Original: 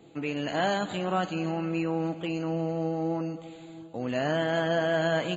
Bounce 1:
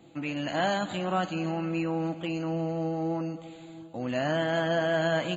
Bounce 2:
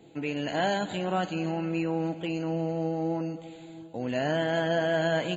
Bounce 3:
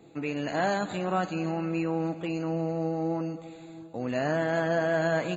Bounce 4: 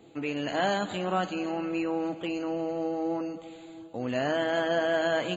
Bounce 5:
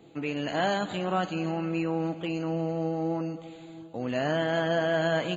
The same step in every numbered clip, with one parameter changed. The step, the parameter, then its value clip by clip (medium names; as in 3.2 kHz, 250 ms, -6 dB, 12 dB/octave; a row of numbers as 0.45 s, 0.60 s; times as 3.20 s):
band-stop, frequency: 430 Hz, 1.2 kHz, 3.1 kHz, 160 Hz, 7.9 kHz